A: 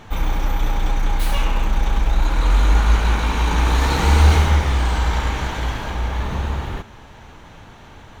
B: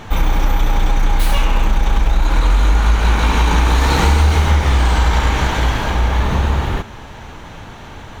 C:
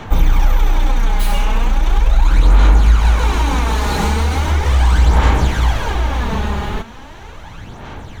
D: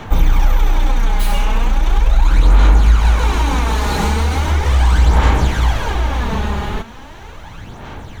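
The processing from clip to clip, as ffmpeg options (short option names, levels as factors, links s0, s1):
-af "acompressor=threshold=0.141:ratio=6,volume=2.51"
-filter_complex "[0:a]acrossover=split=150|1200|5800[s0][s1][s2][s3];[s2]asoftclip=type=hard:threshold=0.0562[s4];[s0][s1][s4][s3]amix=inputs=4:normalize=0,aphaser=in_gain=1:out_gain=1:delay=4.9:decay=0.5:speed=0.38:type=sinusoidal,volume=0.75"
-af "acrusher=bits=9:mix=0:aa=0.000001"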